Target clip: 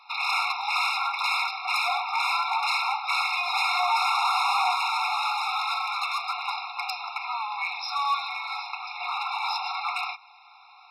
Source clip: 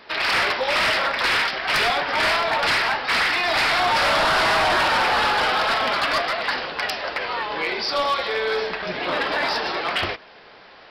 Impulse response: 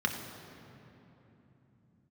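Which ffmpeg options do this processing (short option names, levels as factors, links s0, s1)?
-filter_complex "[0:a]asettb=1/sr,asplit=3[s0][s1][s2];[s0]atrim=end=4.754[s3];[s1]atrim=start=4.75:end=6.29,asetpts=PTS-STARTPTS,afade=t=in:d=0.004:c=qsin,afade=t=out:st=1.536:d=0.004:c=qsin,highpass=f=1100:p=1[s4];[s2]atrim=start=6.286[s5];[s3][s4]acrossfade=d=0.004:c1=hsin:c2=qsin[s6];[s6][s5]acrossfade=d=0.004:c1=qsin:c2=hsin,afftfilt=real='re*eq(mod(floor(b*sr/1024/710),2),1)':imag='im*eq(mod(floor(b*sr/1024/710),2),1)':win_size=1024:overlap=0.75,volume=0.794"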